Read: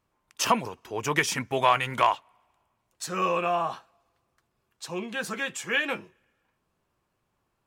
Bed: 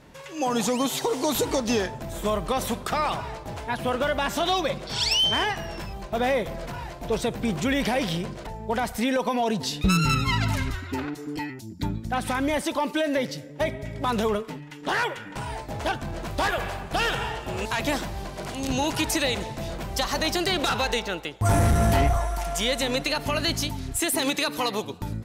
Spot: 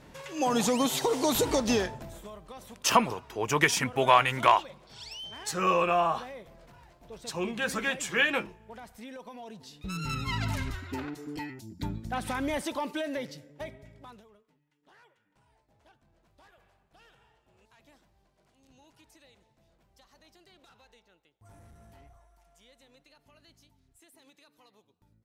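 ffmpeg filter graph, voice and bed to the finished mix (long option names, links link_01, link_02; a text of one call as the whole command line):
ffmpeg -i stem1.wav -i stem2.wav -filter_complex "[0:a]adelay=2450,volume=1dB[link_01];[1:a]volume=12.5dB,afade=type=out:start_time=1.71:duration=0.57:silence=0.11885,afade=type=in:start_time=9.8:duration=0.68:silence=0.199526,afade=type=out:start_time=12.61:duration=1.64:silence=0.0354813[link_02];[link_01][link_02]amix=inputs=2:normalize=0" out.wav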